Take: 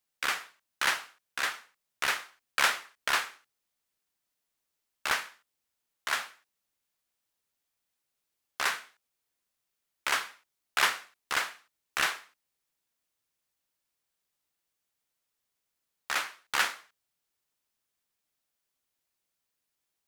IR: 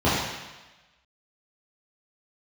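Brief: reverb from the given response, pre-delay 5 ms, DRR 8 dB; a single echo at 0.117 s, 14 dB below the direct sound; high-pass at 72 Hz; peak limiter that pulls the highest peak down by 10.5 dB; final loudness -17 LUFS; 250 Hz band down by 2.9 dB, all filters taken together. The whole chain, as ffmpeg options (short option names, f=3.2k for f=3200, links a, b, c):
-filter_complex "[0:a]highpass=72,equalizer=f=250:t=o:g=-4,alimiter=limit=-20dB:level=0:latency=1,aecho=1:1:117:0.2,asplit=2[a][b];[1:a]atrim=start_sample=2205,adelay=5[c];[b][c]afir=irnorm=-1:irlink=0,volume=-27.5dB[d];[a][d]amix=inputs=2:normalize=0,volume=18dB"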